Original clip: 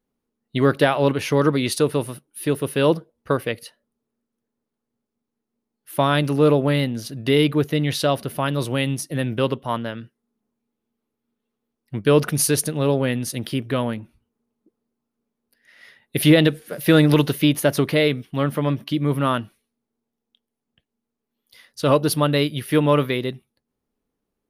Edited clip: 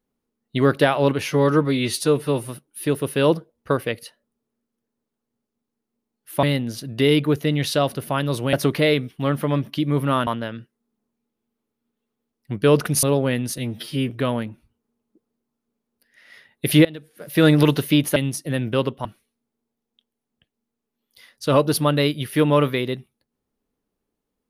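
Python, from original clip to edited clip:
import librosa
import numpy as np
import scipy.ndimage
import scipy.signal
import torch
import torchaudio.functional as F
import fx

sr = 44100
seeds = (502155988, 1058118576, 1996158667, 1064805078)

y = fx.edit(x, sr, fx.stretch_span(start_s=1.28, length_s=0.8, factor=1.5),
    fx.cut(start_s=6.03, length_s=0.68),
    fx.swap(start_s=8.81, length_s=0.89, other_s=17.67, other_length_s=1.74),
    fx.cut(start_s=12.46, length_s=0.34),
    fx.stretch_span(start_s=13.35, length_s=0.26, factor=2.0),
    fx.fade_in_from(start_s=16.36, length_s=0.61, curve='qua', floor_db=-21.5), tone=tone)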